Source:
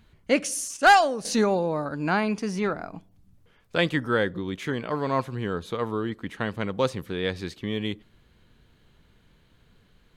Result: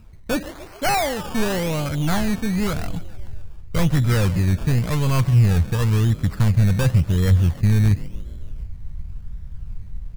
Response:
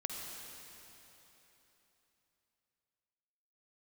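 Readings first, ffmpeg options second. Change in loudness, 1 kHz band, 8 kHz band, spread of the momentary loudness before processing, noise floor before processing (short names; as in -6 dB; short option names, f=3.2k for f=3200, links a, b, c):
+5.5 dB, -4.0 dB, +1.0 dB, 11 LU, -61 dBFS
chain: -filter_complex "[0:a]acrossover=split=2900[a][b];[b]acompressor=threshold=-46dB:ratio=4:attack=1:release=60[c];[a][c]amix=inputs=2:normalize=0,lowshelf=f=170:g=11.5,asplit=6[d][e][f][g][h][i];[e]adelay=143,afreqshift=40,volume=-20dB[j];[f]adelay=286,afreqshift=80,volume=-24dB[k];[g]adelay=429,afreqshift=120,volume=-28dB[l];[h]adelay=572,afreqshift=160,volume=-32dB[m];[i]adelay=715,afreqshift=200,volume=-36.1dB[n];[d][j][k][l][m][n]amix=inputs=6:normalize=0,asplit=2[o][p];[p]aeval=exprs='0.0631*(abs(mod(val(0)/0.0631+3,4)-2)-1)':c=same,volume=-8.5dB[q];[o][q]amix=inputs=2:normalize=0,acrusher=samples=17:mix=1:aa=0.000001:lfo=1:lforange=10.2:lforate=0.93,volume=17.5dB,asoftclip=hard,volume=-17.5dB,asubboost=boost=9:cutoff=110"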